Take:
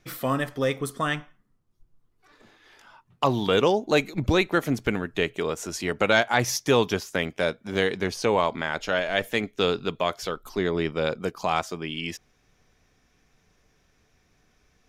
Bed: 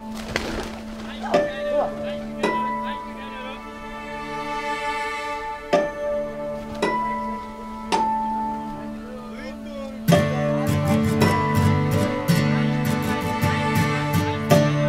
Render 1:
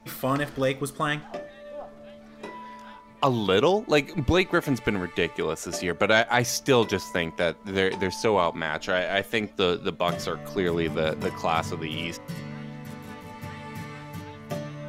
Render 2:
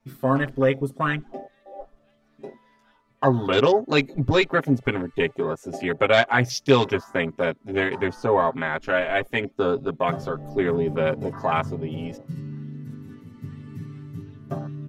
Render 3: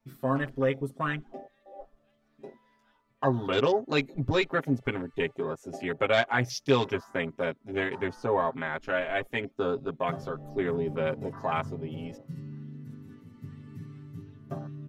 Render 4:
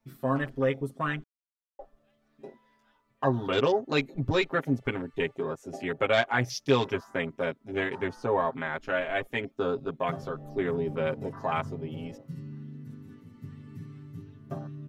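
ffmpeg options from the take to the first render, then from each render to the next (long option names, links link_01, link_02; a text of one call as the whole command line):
ffmpeg -i in.wav -i bed.wav -filter_complex "[1:a]volume=-17dB[link_01];[0:a][link_01]amix=inputs=2:normalize=0" out.wav
ffmpeg -i in.wav -af "afwtdn=0.0282,aecho=1:1:7.5:0.95" out.wav
ffmpeg -i in.wav -af "volume=-6.5dB" out.wav
ffmpeg -i in.wav -filter_complex "[0:a]asplit=3[link_01][link_02][link_03];[link_01]atrim=end=1.24,asetpts=PTS-STARTPTS,afade=type=out:start_time=1.236:duration=0.004:curve=hsin[link_04];[link_02]atrim=start=1.24:end=1.79,asetpts=PTS-STARTPTS,volume=0[link_05];[link_03]atrim=start=1.79,asetpts=PTS-STARTPTS,afade=type=in:duration=0.004:curve=hsin[link_06];[link_04][link_05][link_06]concat=n=3:v=0:a=1" out.wav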